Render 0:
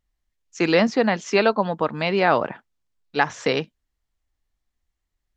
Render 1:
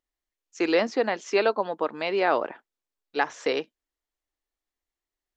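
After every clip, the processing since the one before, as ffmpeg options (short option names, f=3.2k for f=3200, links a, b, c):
-af "lowshelf=f=230:t=q:w=1.5:g=-12,volume=-5.5dB"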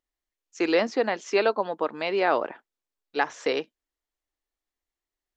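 -af anull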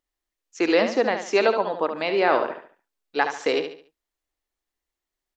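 -af "aecho=1:1:71|142|213|284:0.398|0.139|0.0488|0.0171,volume=2.5dB"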